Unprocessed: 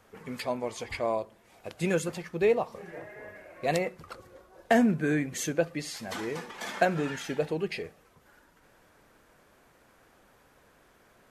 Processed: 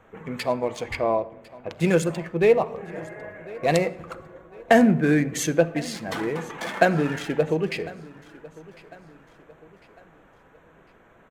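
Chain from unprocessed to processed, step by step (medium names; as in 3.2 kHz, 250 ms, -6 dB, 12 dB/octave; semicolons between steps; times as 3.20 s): local Wiener filter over 9 samples; 0.95–1.70 s: peaking EQ 8.7 kHz -14.5 dB 1.6 oct; on a send: feedback delay 1051 ms, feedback 43%, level -21 dB; on the sum: simulated room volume 3600 m³, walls furnished, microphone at 0.66 m; trim +6.5 dB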